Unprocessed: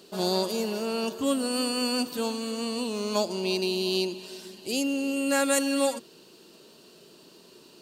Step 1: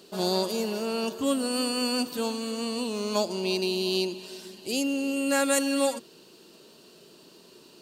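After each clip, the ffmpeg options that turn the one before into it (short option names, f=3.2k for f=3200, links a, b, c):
-af anull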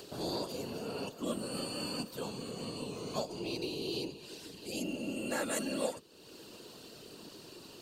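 -af "acompressor=mode=upward:threshold=-28dB:ratio=2.5,afftfilt=real='hypot(re,im)*cos(2*PI*random(0))':imag='hypot(re,im)*sin(2*PI*random(1))':win_size=512:overlap=0.75,volume=-4.5dB"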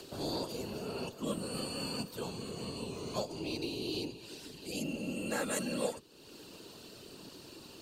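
-af "afreqshift=-25"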